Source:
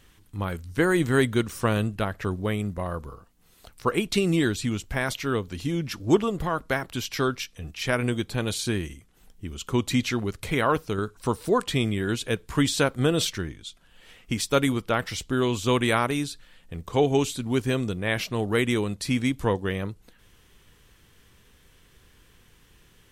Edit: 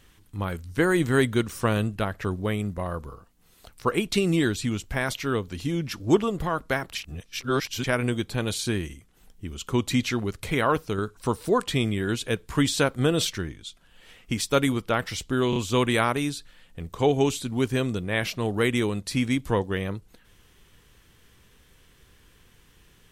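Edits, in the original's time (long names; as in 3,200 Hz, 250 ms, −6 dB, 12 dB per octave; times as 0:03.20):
0:06.95–0:07.84: reverse
0:15.50: stutter 0.03 s, 3 plays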